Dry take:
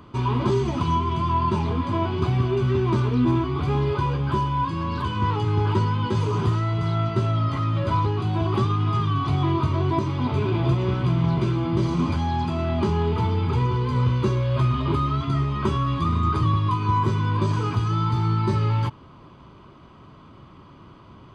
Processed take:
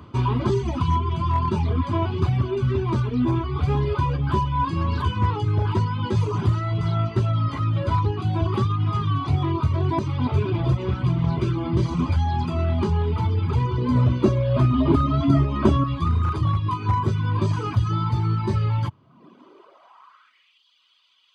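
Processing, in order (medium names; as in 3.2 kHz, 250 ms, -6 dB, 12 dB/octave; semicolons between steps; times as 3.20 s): high-pass sweep 71 Hz -> 3.3 kHz, 18.77–20.63 s; hard clipper -11.5 dBFS, distortion -28 dB; reverb removal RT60 0.95 s; gain riding 0.5 s; 13.78–15.84 s: small resonant body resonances 280/610 Hz, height 13 dB, ringing for 30 ms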